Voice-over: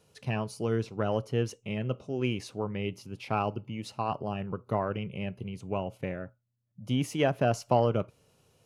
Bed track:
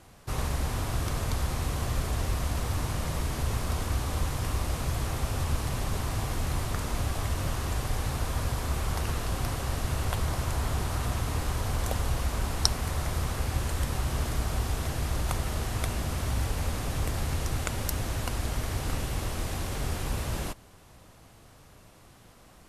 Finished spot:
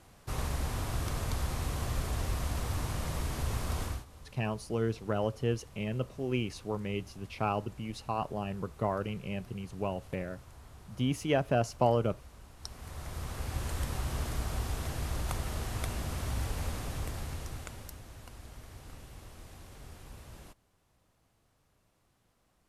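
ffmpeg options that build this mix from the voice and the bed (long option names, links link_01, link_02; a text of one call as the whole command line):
ffmpeg -i stem1.wav -i stem2.wav -filter_complex "[0:a]adelay=4100,volume=-2dB[link_01];[1:a]volume=14dB,afade=type=out:start_time=3.84:duration=0.21:silence=0.112202,afade=type=in:start_time=12.58:duration=1.15:silence=0.125893,afade=type=out:start_time=16.65:duration=1.36:silence=0.223872[link_02];[link_01][link_02]amix=inputs=2:normalize=0" out.wav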